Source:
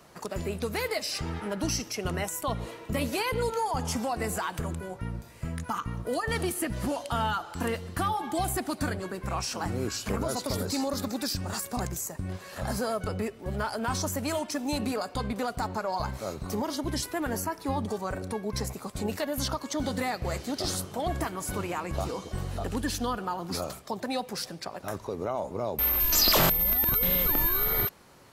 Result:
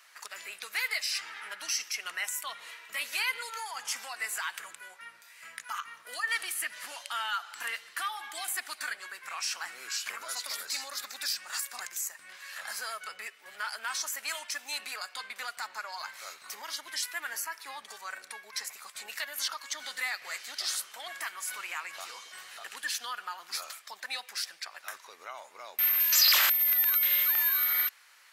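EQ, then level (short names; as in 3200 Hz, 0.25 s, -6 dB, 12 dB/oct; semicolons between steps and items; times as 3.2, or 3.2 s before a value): resonant high-pass 1800 Hz, resonance Q 1.6; 0.0 dB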